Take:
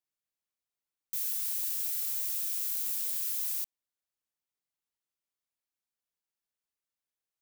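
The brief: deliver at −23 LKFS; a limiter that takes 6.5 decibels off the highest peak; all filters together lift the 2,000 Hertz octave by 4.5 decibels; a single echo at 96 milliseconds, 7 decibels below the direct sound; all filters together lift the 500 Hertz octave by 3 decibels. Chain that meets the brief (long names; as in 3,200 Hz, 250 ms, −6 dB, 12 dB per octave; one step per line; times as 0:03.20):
parametric band 500 Hz +3.5 dB
parametric band 2,000 Hz +5.5 dB
brickwall limiter −26.5 dBFS
single-tap delay 96 ms −7 dB
level +10 dB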